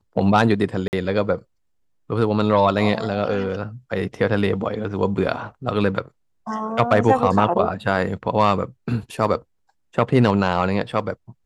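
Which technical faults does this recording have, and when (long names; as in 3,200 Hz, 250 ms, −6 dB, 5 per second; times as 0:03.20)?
0:00.88–0:00.93: drop-out 49 ms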